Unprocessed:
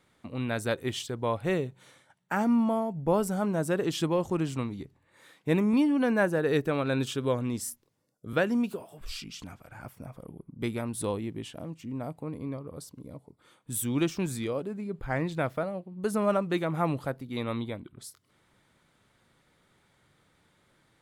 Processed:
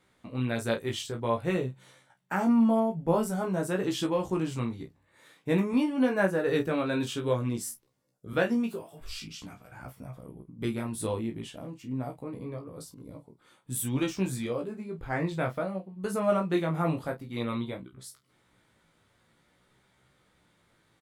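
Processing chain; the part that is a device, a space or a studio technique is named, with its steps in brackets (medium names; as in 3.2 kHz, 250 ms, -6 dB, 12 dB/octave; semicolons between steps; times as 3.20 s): double-tracked vocal (doubling 31 ms -9.5 dB; chorus 0.5 Hz, delay 15.5 ms, depth 2.6 ms); trim +2 dB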